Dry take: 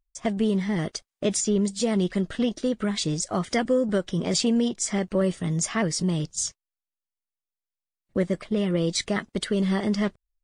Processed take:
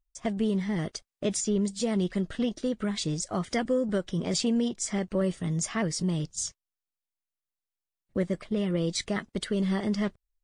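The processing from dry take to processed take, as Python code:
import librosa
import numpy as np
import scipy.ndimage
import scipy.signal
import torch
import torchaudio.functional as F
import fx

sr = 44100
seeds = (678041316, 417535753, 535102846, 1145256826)

y = fx.low_shelf(x, sr, hz=130.0, db=4.0)
y = y * librosa.db_to_amplitude(-4.5)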